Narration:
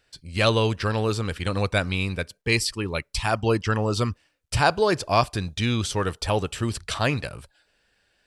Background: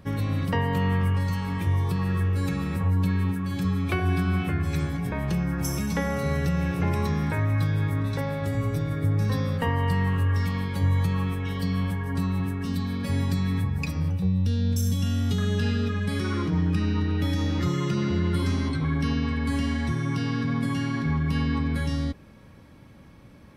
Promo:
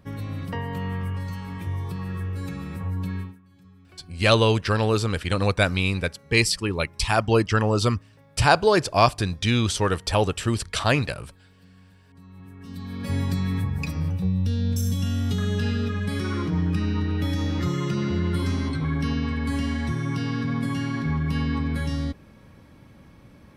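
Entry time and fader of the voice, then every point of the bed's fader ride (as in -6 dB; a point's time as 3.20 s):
3.85 s, +2.5 dB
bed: 3.20 s -5.5 dB
3.42 s -26.5 dB
12.06 s -26.5 dB
13.12 s 0 dB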